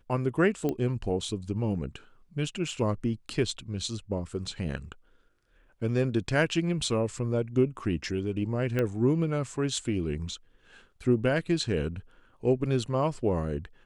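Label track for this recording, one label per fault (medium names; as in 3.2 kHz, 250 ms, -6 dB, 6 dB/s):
0.690000	0.690000	pop -17 dBFS
8.790000	8.790000	pop -16 dBFS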